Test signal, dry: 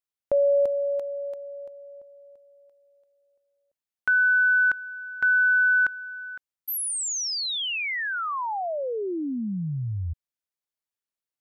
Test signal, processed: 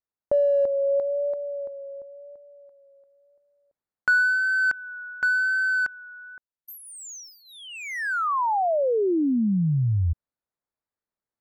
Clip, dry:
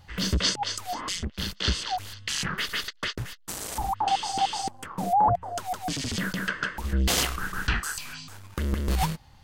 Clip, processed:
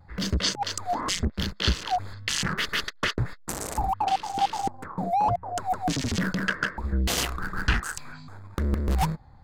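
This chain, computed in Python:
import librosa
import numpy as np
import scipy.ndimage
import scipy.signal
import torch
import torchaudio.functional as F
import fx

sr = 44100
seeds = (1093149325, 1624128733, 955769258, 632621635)

y = fx.wiener(x, sr, points=15)
y = fx.vibrato(y, sr, rate_hz=0.94, depth_cents=31.0)
y = fx.rider(y, sr, range_db=5, speed_s=0.5)
y = y * 10.0 ** (2.0 / 20.0)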